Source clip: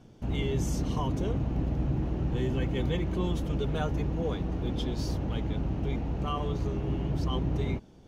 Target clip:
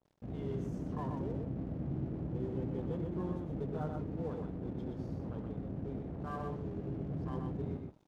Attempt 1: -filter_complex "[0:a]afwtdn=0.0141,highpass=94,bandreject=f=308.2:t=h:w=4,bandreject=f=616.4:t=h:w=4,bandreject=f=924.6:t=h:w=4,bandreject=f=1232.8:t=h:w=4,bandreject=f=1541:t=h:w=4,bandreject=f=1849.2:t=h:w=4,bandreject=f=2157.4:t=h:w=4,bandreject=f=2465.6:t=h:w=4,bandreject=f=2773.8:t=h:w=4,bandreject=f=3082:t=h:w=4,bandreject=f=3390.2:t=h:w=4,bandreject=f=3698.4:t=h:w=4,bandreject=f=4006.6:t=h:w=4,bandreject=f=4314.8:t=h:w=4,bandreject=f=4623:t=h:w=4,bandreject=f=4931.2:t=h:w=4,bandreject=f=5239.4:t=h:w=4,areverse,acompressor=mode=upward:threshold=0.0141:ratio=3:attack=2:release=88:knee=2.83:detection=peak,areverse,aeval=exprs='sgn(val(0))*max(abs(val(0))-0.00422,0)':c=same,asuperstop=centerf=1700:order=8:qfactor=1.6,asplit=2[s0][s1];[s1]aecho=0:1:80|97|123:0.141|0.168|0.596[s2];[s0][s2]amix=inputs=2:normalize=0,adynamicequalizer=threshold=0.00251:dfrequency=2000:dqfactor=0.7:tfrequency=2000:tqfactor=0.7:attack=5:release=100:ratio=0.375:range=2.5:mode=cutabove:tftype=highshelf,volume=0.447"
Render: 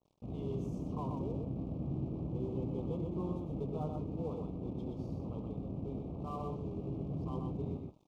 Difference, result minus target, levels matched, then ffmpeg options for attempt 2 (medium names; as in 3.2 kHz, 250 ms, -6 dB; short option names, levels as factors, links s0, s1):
2 kHz band -13.0 dB
-filter_complex "[0:a]afwtdn=0.0141,highpass=94,bandreject=f=308.2:t=h:w=4,bandreject=f=616.4:t=h:w=4,bandreject=f=924.6:t=h:w=4,bandreject=f=1232.8:t=h:w=4,bandreject=f=1541:t=h:w=4,bandreject=f=1849.2:t=h:w=4,bandreject=f=2157.4:t=h:w=4,bandreject=f=2465.6:t=h:w=4,bandreject=f=2773.8:t=h:w=4,bandreject=f=3082:t=h:w=4,bandreject=f=3390.2:t=h:w=4,bandreject=f=3698.4:t=h:w=4,bandreject=f=4006.6:t=h:w=4,bandreject=f=4314.8:t=h:w=4,bandreject=f=4623:t=h:w=4,bandreject=f=4931.2:t=h:w=4,bandreject=f=5239.4:t=h:w=4,areverse,acompressor=mode=upward:threshold=0.0141:ratio=3:attack=2:release=88:knee=2.83:detection=peak,areverse,aeval=exprs='sgn(val(0))*max(abs(val(0))-0.00422,0)':c=same,asplit=2[s0][s1];[s1]aecho=0:1:80|97|123:0.141|0.168|0.596[s2];[s0][s2]amix=inputs=2:normalize=0,adynamicequalizer=threshold=0.00251:dfrequency=2000:dqfactor=0.7:tfrequency=2000:tqfactor=0.7:attack=5:release=100:ratio=0.375:range=2.5:mode=cutabove:tftype=highshelf,volume=0.447"